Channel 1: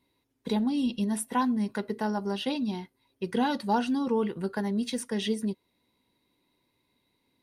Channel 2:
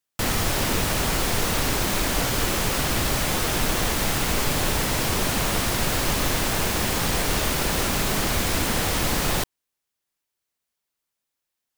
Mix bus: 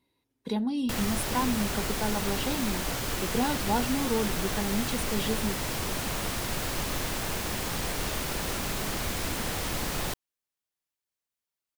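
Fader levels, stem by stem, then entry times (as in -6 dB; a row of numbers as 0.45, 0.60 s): -2.0, -8.0 dB; 0.00, 0.70 s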